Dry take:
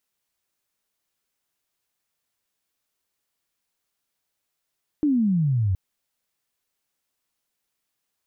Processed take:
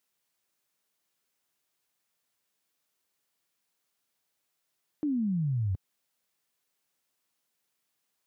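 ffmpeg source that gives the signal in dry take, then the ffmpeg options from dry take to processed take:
-f lavfi -i "aevalsrc='pow(10,(-17-2*t/0.72)/20)*sin(2*PI*310*0.72/log(89/310)*(exp(log(89/310)*t/0.72)-1))':d=0.72:s=44100"
-af "highpass=110,alimiter=level_in=1.5dB:limit=-24dB:level=0:latency=1:release=256,volume=-1.5dB"

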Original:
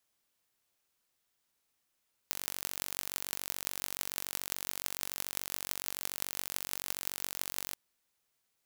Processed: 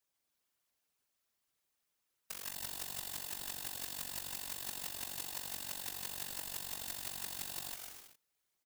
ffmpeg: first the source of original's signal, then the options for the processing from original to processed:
-f lavfi -i "aevalsrc='0.562*eq(mod(n,938),0)*(0.5+0.5*eq(mod(n,7504),0))':d=5.43:s=44100"
-filter_complex "[0:a]asplit=2[a][b];[b]aecho=0:1:150|255|328.5|380|416:0.631|0.398|0.251|0.158|0.1[c];[a][c]amix=inputs=2:normalize=0,afftfilt=real='hypot(re,im)*cos(2*PI*random(0))':imag='hypot(re,im)*sin(2*PI*random(1))':win_size=512:overlap=0.75"

